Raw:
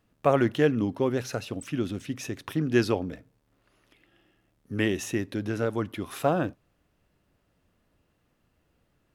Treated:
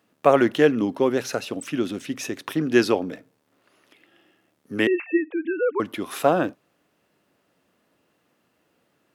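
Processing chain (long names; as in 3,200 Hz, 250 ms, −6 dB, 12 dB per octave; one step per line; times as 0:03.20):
0:04.87–0:05.80: three sine waves on the formant tracks
high-pass filter 230 Hz 12 dB per octave
level +6 dB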